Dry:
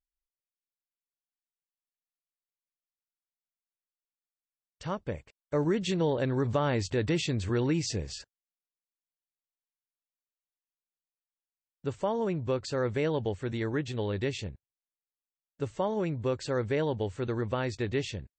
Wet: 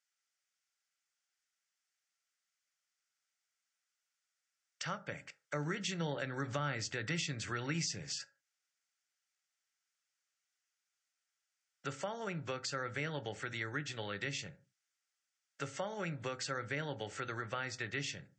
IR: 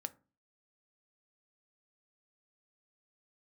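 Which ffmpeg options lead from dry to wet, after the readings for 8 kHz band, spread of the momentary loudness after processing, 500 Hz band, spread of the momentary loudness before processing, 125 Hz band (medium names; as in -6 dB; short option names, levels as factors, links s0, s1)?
0.0 dB, 6 LU, -13.0 dB, 10 LU, -10.0 dB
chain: -filter_complex "[0:a]lowshelf=f=440:t=q:w=1.5:g=-6.5,crystalizer=i=5.5:c=0,highpass=f=140:w=0.5412,highpass=f=140:w=1.3066,equalizer=f=220:t=q:w=4:g=-9,equalizer=f=510:t=q:w=4:g=-6,equalizer=f=980:t=q:w=4:g=-7,equalizer=f=1400:t=q:w=4:g=10,equalizer=f=2000:t=q:w=4:g=6,equalizer=f=4000:t=q:w=4:g=-6,lowpass=f=6600:w=0.5412,lowpass=f=6600:w=1.3066[s0];[1:a]atrim=start_sample=2205,afade=t=out:st=0.22:d=0.01,atrim=end_sample=10143[s1];[s0][s1]afir=irnorm=-1:irlink=0,acrossover=split=240[s2][s3];[s3]acompressor=threshold=0.00447:ratio=3[s4];[s2][s4]amix=inputs=2:normalize=0,volume=1.78"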